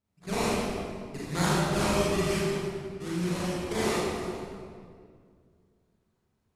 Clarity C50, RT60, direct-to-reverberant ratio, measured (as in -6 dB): -4.5 dB, 2.1 s, -8.5 dB